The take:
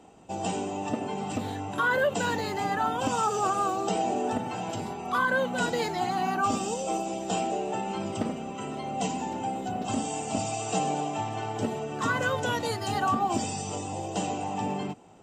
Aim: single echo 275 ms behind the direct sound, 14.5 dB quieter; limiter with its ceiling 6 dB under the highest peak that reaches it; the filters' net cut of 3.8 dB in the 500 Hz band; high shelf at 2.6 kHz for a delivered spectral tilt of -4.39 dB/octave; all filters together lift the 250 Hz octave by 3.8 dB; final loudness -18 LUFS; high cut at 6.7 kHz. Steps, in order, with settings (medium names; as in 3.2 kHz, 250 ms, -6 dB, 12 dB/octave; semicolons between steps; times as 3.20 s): low-pass 6.7 kHz; peaking EQ 250 Hz +6.5 dB; peaking EQ 500 Hz -7 dB; treble shelf 2.6 kHz +4 dB; peak limiter -19.5 dBFS; delay 275 ms -14.5 dB; trim +12 dB